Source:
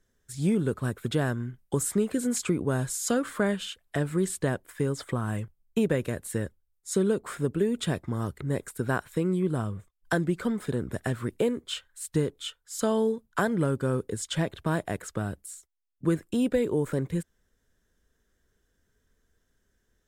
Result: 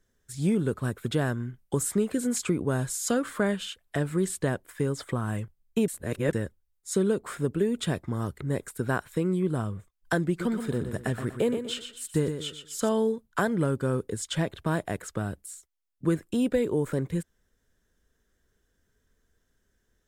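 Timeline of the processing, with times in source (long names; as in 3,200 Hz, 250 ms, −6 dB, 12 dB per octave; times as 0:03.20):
0:05.88–0:06.33: reverse
0:10.27–0:12.89: repeating echo 122 ms, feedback 33%, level −8 dB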